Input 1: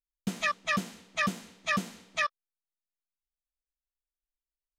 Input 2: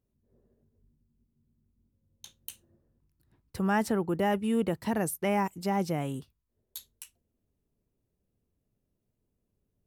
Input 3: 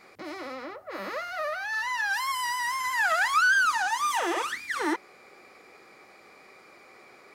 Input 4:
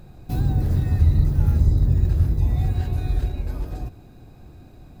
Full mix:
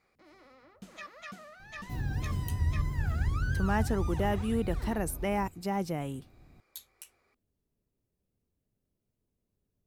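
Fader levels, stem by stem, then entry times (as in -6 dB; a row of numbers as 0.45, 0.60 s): -16.5, -3.0, -20.0, -12.5 dB; 0.55, 0.00, 0.00, 1.60 s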